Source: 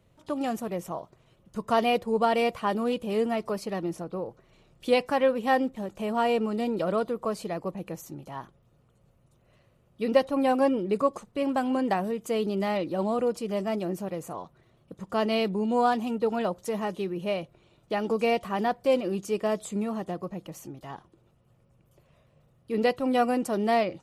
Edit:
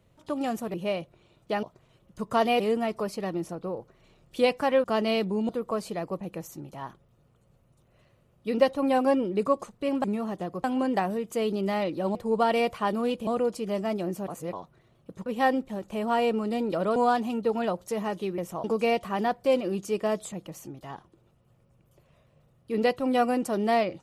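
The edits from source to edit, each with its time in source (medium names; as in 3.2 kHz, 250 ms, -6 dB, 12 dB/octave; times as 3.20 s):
0.74–1.00 s: swap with 17.15–18.04 s
1.97–3.09 s: move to 13.09 s
5.33–7.03 s: swap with 15.08–15.73 s
14.10–14.35 s: reverse
19.72–20.32 s: move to 11.58 s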